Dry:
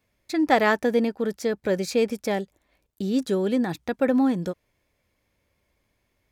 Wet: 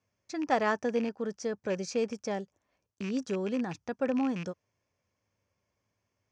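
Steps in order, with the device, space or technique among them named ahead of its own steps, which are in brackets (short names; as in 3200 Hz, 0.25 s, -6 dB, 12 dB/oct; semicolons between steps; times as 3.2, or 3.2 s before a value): car door speaker with a rattle (rattling part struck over -29 dBFS, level -22 dBFS; speaker cabinet 100–7000 Hz, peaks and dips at 100 Hz +8 dB, 320 Hz -4 dB, 1100 Hz +3 dB, 2100 Hz -5 dB, 3800 Hz -9 dB, 5900 Hz +8 dB); gain -7.5 dB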